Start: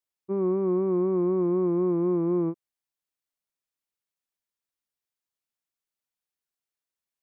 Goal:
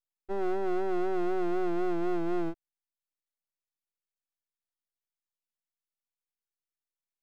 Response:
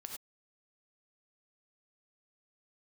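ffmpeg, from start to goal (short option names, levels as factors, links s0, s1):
-af "aeval=exprs='max(val(0),0)':c=same"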